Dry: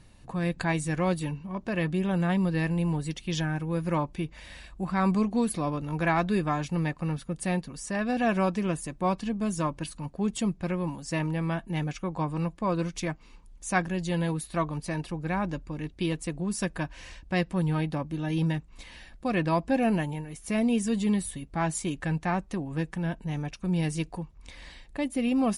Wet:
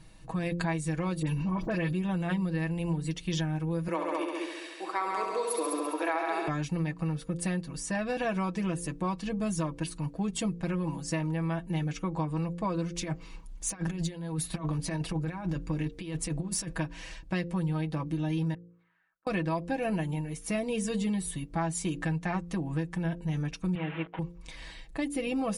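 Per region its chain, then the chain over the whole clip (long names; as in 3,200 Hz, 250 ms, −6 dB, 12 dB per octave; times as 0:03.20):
0:01.22–0:01.93: all-pass dispersion highs, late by 53 ms, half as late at 2,500 Hz + envelope flattener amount 70%
0:03.88–0:06.48: Butterworth high-pass 310 Hz 48 dB per octave + echo machine with several playback heads 68 ms, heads all three, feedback 45%, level −6.5 dB
0:13.01–0:16.73: compressor whose output falls as the input rises −33 dBFS, ratio −0.5 + hard clipping −23.5 dBFS
0:18.54–0:19.27: transistor ladder low-pass 1,500 Hz, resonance 70% + first difference
0:23.75–0:24.19: linear delta modulator 16 kbit/s, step −34.5 dBFS + high-pass filter 470 Hz 6 dB per octave + noise gate −45 dBFS, range −27 dB
whole clip: comb filter 6.2 ms, depth 67%; hum removal 57.61 Hz, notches 9; downward compressor, threshold −27 dBFS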